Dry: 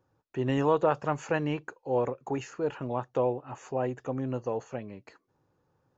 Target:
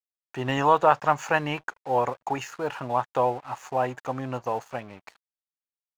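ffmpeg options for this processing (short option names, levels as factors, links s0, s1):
-af "aeval=exprs='sgn(val(0))*max(abs(val(0))-0.00188,0)':c=same,lowshelf=f=590:t=q:w=1.5:g=-8,volume=2.66"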